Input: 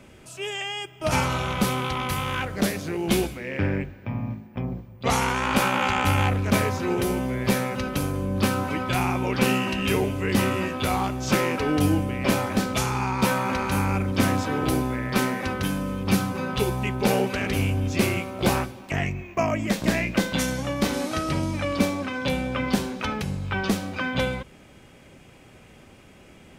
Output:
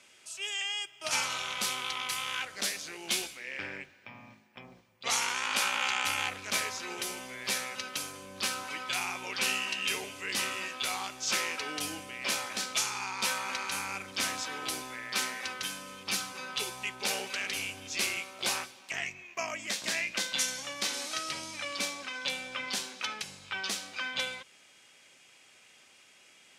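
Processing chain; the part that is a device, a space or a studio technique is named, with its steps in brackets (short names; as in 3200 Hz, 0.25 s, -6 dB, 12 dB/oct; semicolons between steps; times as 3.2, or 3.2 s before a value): piezo pickup straight into a mixer (LPF 6400 Hz 12 dB/oct; differentiator); gain +6.5 dB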